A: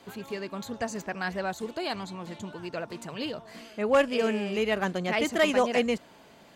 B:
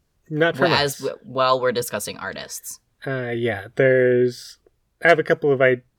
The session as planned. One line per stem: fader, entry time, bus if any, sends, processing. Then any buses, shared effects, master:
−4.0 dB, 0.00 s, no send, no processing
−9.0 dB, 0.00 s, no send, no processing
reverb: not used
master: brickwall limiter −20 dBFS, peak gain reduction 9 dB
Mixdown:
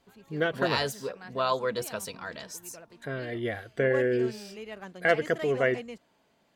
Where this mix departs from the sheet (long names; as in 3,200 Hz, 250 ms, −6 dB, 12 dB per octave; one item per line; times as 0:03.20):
stem A −4.0 dB → −14.5 dB
master: missing brickwall limiter −20 dBFS, peak gain reduction 9 dB